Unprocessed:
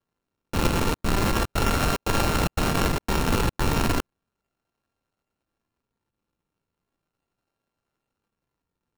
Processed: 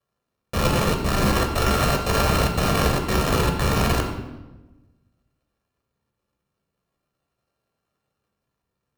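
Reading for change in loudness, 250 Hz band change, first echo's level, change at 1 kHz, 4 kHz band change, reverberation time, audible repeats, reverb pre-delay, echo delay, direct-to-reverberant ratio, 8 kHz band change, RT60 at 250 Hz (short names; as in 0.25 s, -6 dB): +3.0 dB, +2.5 dB, none, +3.0 dB, +3.5 dB, 1.1 s, none, 15 ms, none, 3.5 dB, +2.5 dB, 1.5 s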